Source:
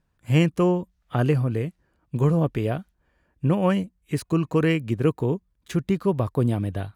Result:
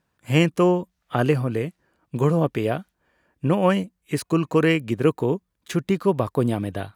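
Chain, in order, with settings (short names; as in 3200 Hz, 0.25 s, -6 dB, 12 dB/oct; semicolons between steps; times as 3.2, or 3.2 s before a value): HPF 250 Hz 6 dB/oct; gain +4.5 dB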